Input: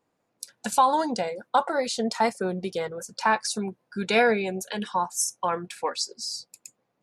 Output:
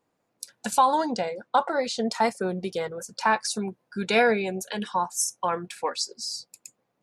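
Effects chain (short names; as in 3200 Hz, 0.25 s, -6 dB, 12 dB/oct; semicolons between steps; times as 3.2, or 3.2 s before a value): 0.98–2.08 LPF 6800 Hz 12 dB/oct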